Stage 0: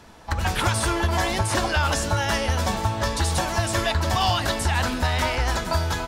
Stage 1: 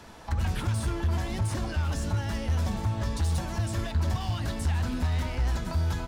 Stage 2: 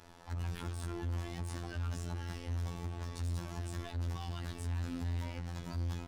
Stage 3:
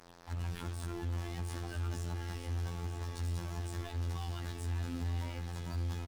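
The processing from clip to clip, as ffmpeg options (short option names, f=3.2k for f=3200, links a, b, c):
-filter_complex "[0:a]volume=20dB,asoftclip=hard,volume=-20dB,acrossover=split=270[a][b];[b]acompressor=threshold=-38dB:ratio=5[c];[a][c]amix=inputs=2:normalize=0"
-af "volume=27dB,asoftclip=hard,volume=-27dB,afftfilt=real='hypot(re,im)*cos(PI*b)':imag='0':win_size=2048:overlap=0.75,volume=-5.5dB"
-af "acrusher=bits=8:mix=0:aa=0.5,aecho=1:1:938:0.355"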